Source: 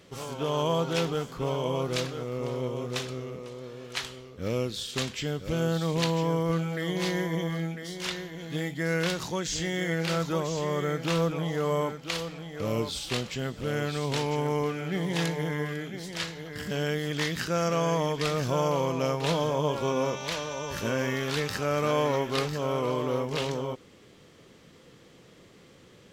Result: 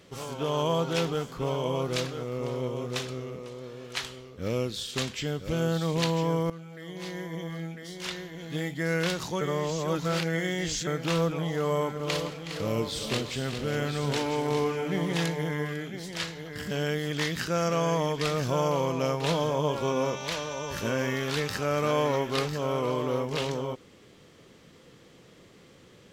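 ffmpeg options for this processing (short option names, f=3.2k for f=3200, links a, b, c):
-filter_complex "[0:a]asettb=1/sr,asplit=3[a][b][c];[a]atrim=end=11.594[d];[b]atrim=start=11.59:end=15.17,asetpts=PTS-STARTPTS,afade=t=in:d=0.004:c=qsin,afade=t=out:st=3.576:d=0.004:c=qsin,aecho=1:1:165|368|409:0.158|0.251|0.355,atrim=end_sample=157878[e];[c]atrim=start=15.166[f];[d][e]acrossfade=d=0.004:c1=hsin:c2=qsin[g];[g][f]acrossfade=d=0.004:c1=qsin:c2=hsin,asplit=4[h][i][j][k];[h]atrim=end=6.5,asetpts=PTS-STARTPTS,afade=t=out:st=6.496:d=0.004:c=hsin:silence=0.149624[l];[i]atrim=start=6.5:end=9.412,asetpts=PTS-STARTPTS,afade=t=in:d=2.19:silence=0.149624[m];[j]atrim=start=9.408:end=10.872,asetpts=PTS-STARTPTS,areverse[n];[k]atrim=start=10.868[o];[l][m]concat=n=2:v=0:a=1[p];[p][n]acrossfade=d=0.004:c1=hsin:c2=hsin[q];[q][o]acrossfade=d=0.004:c1=hsin:c2=hsin"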